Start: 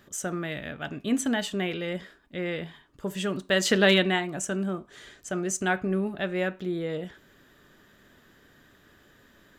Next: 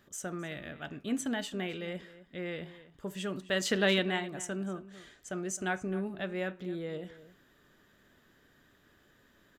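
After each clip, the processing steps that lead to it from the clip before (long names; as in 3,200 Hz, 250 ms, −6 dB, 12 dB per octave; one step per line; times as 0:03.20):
slap from a distant wall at 45 metres, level −16 dB
level −7 dB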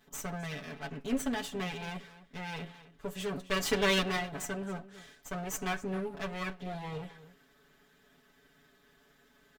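lower of the sound and its delayed copy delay 4.6 ms
comb filter 7.1 ms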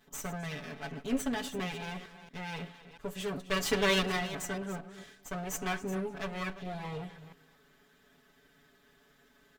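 delay that plays each chunk backwards 229 ms, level −13.5 dB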